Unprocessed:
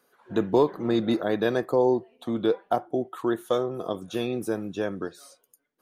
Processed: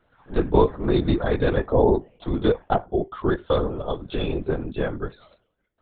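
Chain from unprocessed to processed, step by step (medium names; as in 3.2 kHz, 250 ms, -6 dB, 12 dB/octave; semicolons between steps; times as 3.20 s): LPC vocoder at 8 kHz whisper; trim +3.5 dB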